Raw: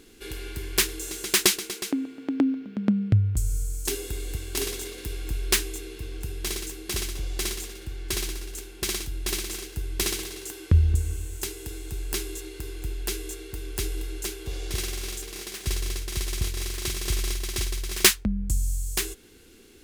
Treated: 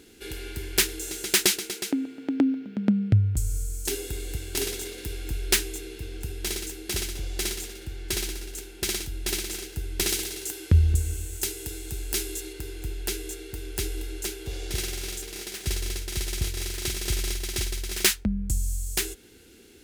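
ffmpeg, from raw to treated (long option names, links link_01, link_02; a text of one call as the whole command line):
ffmpeg -i in.wav -filter_complex "[0:a]asettb=1/sr,asplit=3[link_01][link_02][link_03];[link_01]atrim=end=10.094[link_04];[link_02]atrim=start=10.09:end=12.53,asetpts=PTS-STARTPTS,afade=type=in:duration=0.004:curve=qsin,afade=type=out:start_time=2.436:duration=0.004:curve=qsin,highshelf=frequency=4000:gain=5[link_05];[link_03]atrim=start=12.526[link_06];[link_04][link_05]acrossfade=duration=0.004:curve1=hsin:curve2=qsin[link_07];[link_07][link_06]acrossfade=duration=0.004:curve1=qsin:curve2=hsin,highpass=40,bandreject=frequency=1100:width=6.1,alimiter=level_in=7dB:limit=-1dB:release=50:level=0:latency=1,volume=-6.5dB" out.wav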